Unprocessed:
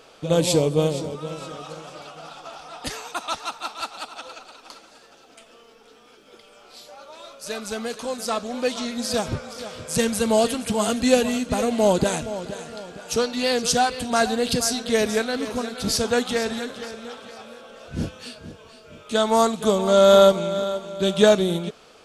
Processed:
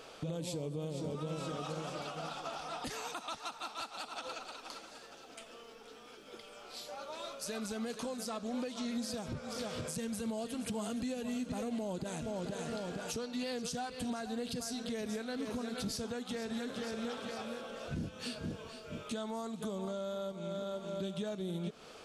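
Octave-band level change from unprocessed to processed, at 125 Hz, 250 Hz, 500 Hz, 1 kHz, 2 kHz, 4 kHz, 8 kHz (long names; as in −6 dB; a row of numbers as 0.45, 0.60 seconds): −12.5, −12.5, −19.0, −16.5, −16.0, −16.0, −16.0 decibels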